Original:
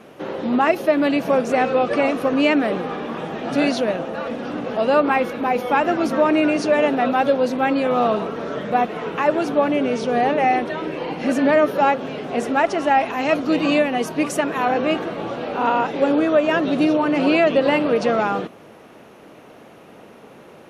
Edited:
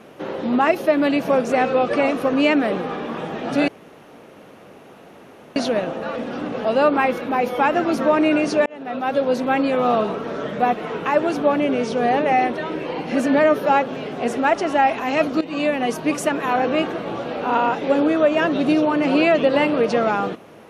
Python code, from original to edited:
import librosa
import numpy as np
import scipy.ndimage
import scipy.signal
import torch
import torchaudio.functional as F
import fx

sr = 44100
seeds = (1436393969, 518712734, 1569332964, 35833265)

y = fx.edit(x, sr, fx.insert_room_tone(at_s=3.68, length_s=1.88),
    fx.fade_in_span(start_s=6.78, length_s=0.68),
    fx.fade_in_from(start_s=13.53, length_s=0.39, floor_db=-16.5), tone=tone)